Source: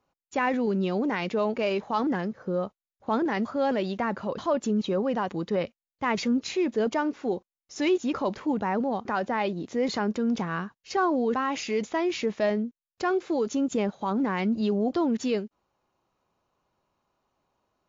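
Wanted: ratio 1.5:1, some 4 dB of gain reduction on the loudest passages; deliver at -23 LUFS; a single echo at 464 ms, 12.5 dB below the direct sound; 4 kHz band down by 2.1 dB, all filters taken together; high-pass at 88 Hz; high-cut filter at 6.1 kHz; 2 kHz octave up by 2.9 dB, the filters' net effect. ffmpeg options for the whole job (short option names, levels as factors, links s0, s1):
-af "highpass=88,lowpass=6100,equalizer=f=2000:t=o:g=4.5,equalizer=f=4000:t=o:g=-4,acompressor=threshold=0.0282:ratio=1.5,aecho=1:1:464:0.237,volume=2.37"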